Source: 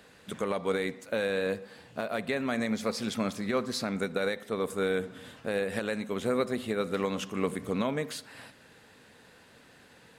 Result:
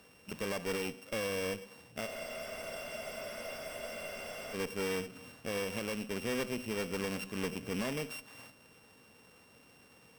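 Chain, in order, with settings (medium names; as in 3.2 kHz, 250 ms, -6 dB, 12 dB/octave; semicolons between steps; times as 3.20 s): sorted samples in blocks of 16 samples; valve stage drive 28 dB, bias 0.5; spectral freeze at 2.08 s, 2.46 s; trim -2 dB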